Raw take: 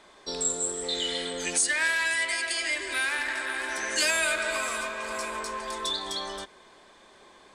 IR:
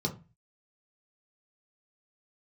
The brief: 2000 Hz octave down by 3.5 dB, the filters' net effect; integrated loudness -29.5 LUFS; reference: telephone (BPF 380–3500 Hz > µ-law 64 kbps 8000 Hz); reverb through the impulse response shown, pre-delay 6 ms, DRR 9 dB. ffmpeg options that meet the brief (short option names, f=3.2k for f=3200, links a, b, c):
-filter_complex "[0:a]equalizer=f=2k:t=o:g=-4,asplit=2[a][b];[1:a]atrim=start_sample=2205,adelay=6[c];[b][c]afir=irnorm=-1:irlink=0,volume=-14dB[d];[a][d]amix=inputs=2:normalize=0,highpass=380,lowpass=3.5k,volume=2dB" -ar 8000 -c:a pcm_mulaw